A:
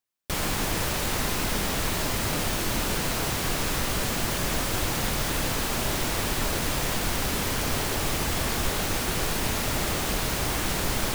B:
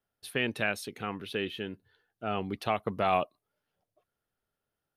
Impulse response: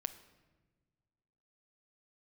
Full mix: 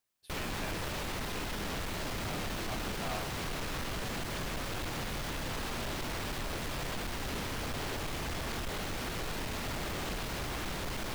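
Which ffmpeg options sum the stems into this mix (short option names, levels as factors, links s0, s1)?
-filter_complex "[0:a]alimiter=limit=0.0631:level=0:latency=1:release=471,acrossover=split=5000[s0][s1];[s1]acompressor=threshold=0.00501:ratio=4:attack=1:release=60[s2];[s0][s2]amix=inputs=2:normalize=0,asoftclip=type=tanh:threshold=0.0188,volume=1.33[s3];[1:a]volume=0.168[s4];[s3][s4]amix=inputs=2:normalize=0"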